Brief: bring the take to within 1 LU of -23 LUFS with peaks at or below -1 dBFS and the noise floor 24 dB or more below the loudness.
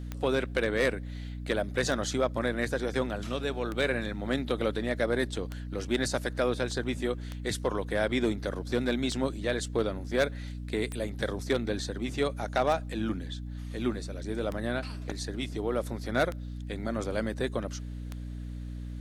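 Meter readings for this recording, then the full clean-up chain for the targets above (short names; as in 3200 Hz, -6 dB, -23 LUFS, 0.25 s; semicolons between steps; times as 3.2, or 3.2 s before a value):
clicks 11; hum 60 Hz; harmonics up to 300 Hz; hum level -36 dBFS; loudness -31.5 LUFS; peak -16.0 dBFS; loudness target -23.0 LUFS
-> de-click; notches 60/120/180/240/300 Hz; gain +8.5 dB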